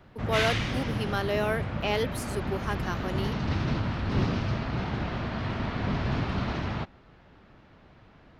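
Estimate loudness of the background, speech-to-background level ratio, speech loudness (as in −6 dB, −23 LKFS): −31.0 LKFS, −1.0 dB, −32.0 LKFS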